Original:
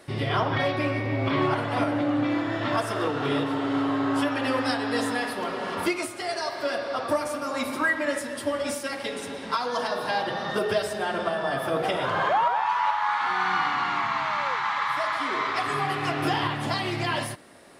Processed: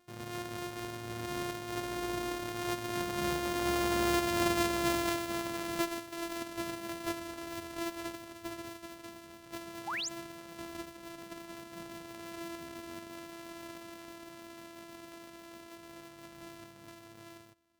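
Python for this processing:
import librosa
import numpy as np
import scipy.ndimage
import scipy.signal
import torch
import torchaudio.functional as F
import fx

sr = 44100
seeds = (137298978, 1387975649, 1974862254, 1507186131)

y = np.r_[np.sort(x[:len(x) // 128 * 128].reshape(-1, 128), axis=1).ravel(), x[len(x) // 128 * 128:]]
y = fx.doppler_pass(y, sr, speed_mps=8, closest_m=9.2, pass_at_s=4.55)
y = fx.spec_paint(y, sr, seeds[0], shape='rise', start_s=9.87, length_s=0.22, low_hz=720.0, high_hz=7900.0, level_db=-32.0)
y = F.gain(torch.from_numpy(y), -4.0).numpy()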